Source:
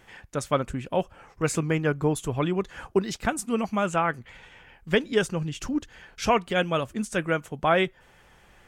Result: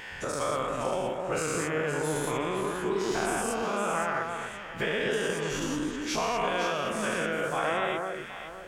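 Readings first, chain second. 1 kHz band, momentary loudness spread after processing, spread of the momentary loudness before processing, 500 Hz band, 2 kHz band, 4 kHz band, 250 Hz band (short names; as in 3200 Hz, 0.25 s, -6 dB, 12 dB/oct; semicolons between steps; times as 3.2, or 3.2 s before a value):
-1.5 dB, 5 LU, 8 LU, -2.5 dB, -0.5 dB, -1.0 dB, -5.0 dB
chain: spectral dilation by 0.24 s; low shelf 250 Hz -7 dB; compressor 2.5:1, threshold -33 dBFS, peak gain reduction 14 dB; vibrato 4.5 Hz 17 cents; echo with dull and thin repeats by turns 0.258 s, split 1600 Hz, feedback 56%, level -3.5 dB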